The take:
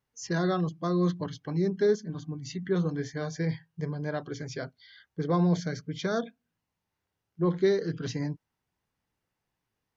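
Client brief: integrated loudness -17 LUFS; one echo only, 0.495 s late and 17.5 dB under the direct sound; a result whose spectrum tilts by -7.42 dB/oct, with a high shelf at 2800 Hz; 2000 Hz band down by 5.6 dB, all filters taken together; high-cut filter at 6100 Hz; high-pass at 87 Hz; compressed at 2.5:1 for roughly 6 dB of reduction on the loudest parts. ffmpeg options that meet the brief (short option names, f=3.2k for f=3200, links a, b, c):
-af "highpass=87,lowpass=6.1k,equalizer=f=2k:t=o:g=-6,highshelf=f=2.8k:g=-4.5,acompressor=threshold=-29dB:ratio=2.5,aecho=1:1:495:0.133,volume=17.5dB"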